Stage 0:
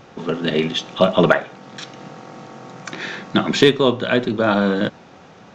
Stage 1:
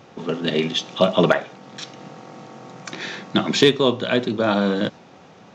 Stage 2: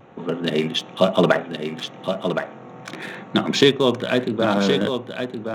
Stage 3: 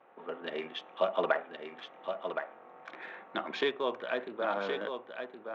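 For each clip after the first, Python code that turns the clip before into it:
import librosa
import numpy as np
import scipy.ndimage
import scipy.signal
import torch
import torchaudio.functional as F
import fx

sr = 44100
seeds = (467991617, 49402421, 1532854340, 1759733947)

y1 = fx.dynamic_eq(x, sr, hz=5300.0, q=0.92, threshold_db=-39.0, ratio=4.0, max_db=4)
y1 = scipy.signal.sosfilt(scipy.signal.butter(2, 83.0, 'highpass', fs=sr, output='sos'), y1)
y1 = fx.peak_eq(y1, sr, hz=1500.0, db=-3.0, octaves=0.58)
y1 = F.gain(torch.from_numpy(y1), -2.0).numpy()
y2 = fx.wiener(y1, sr, points=9)
y2 = y2 + 10.0 ** (-7.0 / 20.0) * np.pad(y2, (int(1068 * sr / 1000.0), 0))[:len(y2)]
y2 = fx.vibrato(y2, sr, rate_hz=1.0, depth_cents=29.0)
y3 = fx.bandpass_edges(y2, sr, low_hz=570.0, high_hz=2100.0)
y3 = F.gain(torch.from_numpy(y3), -8.5).numpy()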